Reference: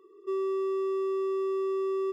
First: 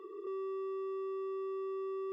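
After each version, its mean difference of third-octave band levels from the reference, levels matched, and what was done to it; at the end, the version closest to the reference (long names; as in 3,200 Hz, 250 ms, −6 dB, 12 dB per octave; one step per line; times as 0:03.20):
2.0 dB: bass and treble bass −12 dB, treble −11 dB
notch filter 950 Hz, Q 9
in parallel at −3 dB: compressor whose output falls as the input rises −37 dBFS, ratio −0.5
on the sum: brickwall limiter −35 dBFS, peak gain reduction 10.5 dB
level +1 dB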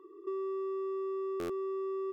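3.0 dB: high-shelf EQ 2,600 Hz −8 dB
downward compressor 6 to 1, threshold −38 dBFS, peak gain reduction 8 dB
thirty-one-band graphic EQ 315 Hz +10 dB, 500 Hz −4 dB, 1,000 Hz +9 dB, 1,600 Hz +8 dB
buffer that repeats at 0:01.39, samples 512, times 8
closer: first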